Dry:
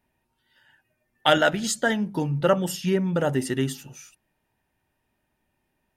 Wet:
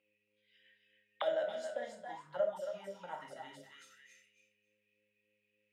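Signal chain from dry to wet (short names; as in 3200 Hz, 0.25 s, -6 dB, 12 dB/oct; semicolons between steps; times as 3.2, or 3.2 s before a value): passive tone stack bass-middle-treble 5-5-5; buzz 100 Hz, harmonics 5, -58 dBFS 0 dB/oct; high shelf 2500 Hz +8.5 dB; thinning echo 0.286 s, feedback 18%, high-pass 790 Hz, level -5 dB; vibrato 3.3 Hz 14 cents; speed mistake 24 fps film run at 25 fps; shoebox room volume 550 m³, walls furnished, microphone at 2.2 m; auto-wah 580–2700 Hz, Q 11, down, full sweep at -28 dBFS; gain +10 dB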